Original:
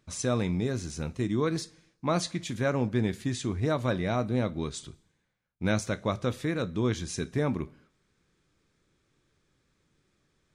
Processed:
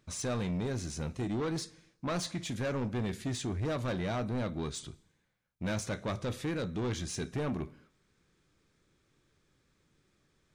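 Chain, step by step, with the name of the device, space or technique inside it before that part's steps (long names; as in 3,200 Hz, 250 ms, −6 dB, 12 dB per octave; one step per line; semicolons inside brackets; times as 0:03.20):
saturation between pre-emphasis and de-emphasis (high-shelf EQ 8,400 Hz +10.5 dB; soft clipping −29 dBFS, distortion −8 dB; high-shelf EQ 8,400 Hz −10.5 dB)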